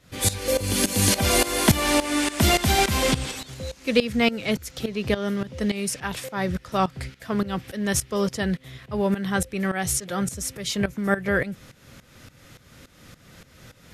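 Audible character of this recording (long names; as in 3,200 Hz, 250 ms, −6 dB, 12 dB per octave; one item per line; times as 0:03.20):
tremolo saw up 3.5 Hz, depth 85%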